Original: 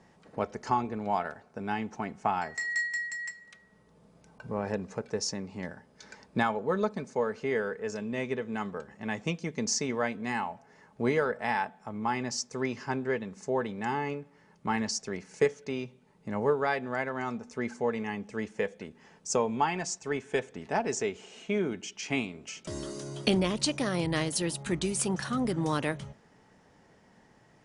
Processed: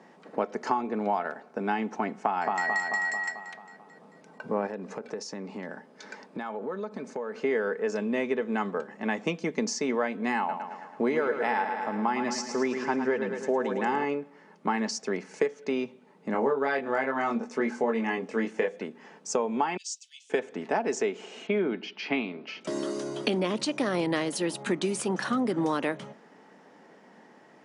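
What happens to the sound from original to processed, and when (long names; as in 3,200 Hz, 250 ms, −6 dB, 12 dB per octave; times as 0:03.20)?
0:02.22–0:02.66: delay throw 220 ms, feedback 55%, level −3.5 dB
0:04.66–0:07.39: downward compressor 10 to 1, threshold −37 dBFS
0:10.38–0:14.05: repeating echo 109 ms, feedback 59%, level −9 dB
0:16.32–0:18.81: double-tracking delay 22 ms −2.5 dB
0:19.77–0:20.30: Butterworth high-pass 3,000 Hz 48 dB per octave
0:21.47–0:22.61: Chebyshev low-pass filter 4,700 Hz, order 4
whole clip: high-pass filter 210 Hz 24 dB per octave; downward compressor 5 to 1, threshold −31 dBFS; high-shelf EQ 4,300 Hz −11 dB; level +8 dB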